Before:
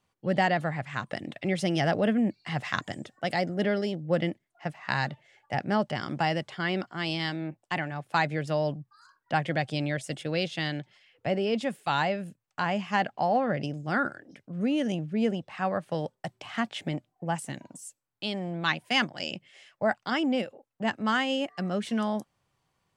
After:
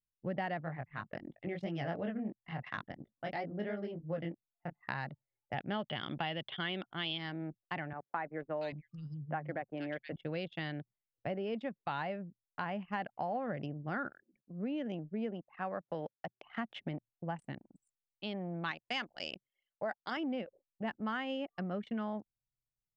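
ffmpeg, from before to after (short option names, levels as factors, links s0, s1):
-filter_complex "[0:a]asplit=3[s0][s1][s2];[s0]afade=t=out:st=0.63:d=0.02[s3];[s1]flanger=delay=18.5:depth=5.5:speed=2.9,afade=t=in:st=0.63:d=0.02,afade=t=out:st=4.8:d=0.02[s4];[s2]afade=t=in:st=4.8:d=0.02[s5];[s3][s4][s5]amix=inputs=3:normalize=0,asettb=1/sr,asplit=3[s6][s7][s8];[s6]atrim=end=5.554[s9];[s7]atrim=start=5.55:end=7.18,asetpts=PTS-STARTPTS,afade=t=in:d=0.004:c=qsin,afade=t=out:st=1.626:d=0.004:c=qsin,lowpass=f=3400:t=q:w=9.7[s10];[s8]atrim=start=7.176[s11];[s9][s10]acrossfade=d=0.004:c1=hsin:c2=qsin[s12];[s12][s11]acrossfade=d=0.004:c1=qsin:c2=hsin,asettb=1/sr,asplit=3[s13][s14][s15];[s13]atrim=end=7.934[s16];[s14]atrim=start=7.93:end=10.16,asetpts=PTS-STARTPTS,afade=t=in:d=0.004:c=qsin,afade=t=out:st=2.226:d=0.004:c=qsin,acrossover=split=190|2300[s17][s18][s19];[s19]adelay=470[s20];[s17]adelay=790[s21];[s21][s18][s20]amix=inputs=3:normalize=0,atrim=end_sample=98343[s22];[s15]atrim=start=10.156[s23];[s16][s22]acrossfade=d=0.004:c1=hsin:c2=qsin[s24];[s24][s23]acrossfade=d=0.004:c1=qsin:c2=hsin,asettb=1/sr,asplit=3[s25][s26][s27];[s25]atrim=end=14.114[s28];[s26]atrim=start=14.11:end=16.5,asetpts=PTS-STARTPTS,afade=t=in:d=0.004:c=qsin,afade=t=out:st=2.386:d=0.004:c=qsin,highpass=190[s29];[s27]atrim=start=16.496[s30];[s28][s29]acrossfade=d=0.004:c1=hsin:c2=qsin[s31];[s31][s30]acrossfade=d=0.004:c1=qsin:c2=hsin,asettb=1/sr,asplit=3[s32][s33][s34];[s32]atrim=end=18.714[s35];[s33]atrim=start=18.71:end=20.17,asetpts=PTS-STARTPTS,afade=t=in:d=0.004:c=qsin,afade=t=out:st=1.456:d=0.004:c=qsin,bass=f=250:g=-9,treble=f=4000:g=12[s36];[s34]atrim=start=20.166[s37];[s35][s36]acrossfade=d=0.004:c1=hsin:c2=qsin[s38];[s38][s37]acrossfade=d=0.004:c1=qsin:c2=hsin,anlmdn=1.58,lowpass=2800,acompressor=threshold=0.0316:ratio=3,volume=0.562"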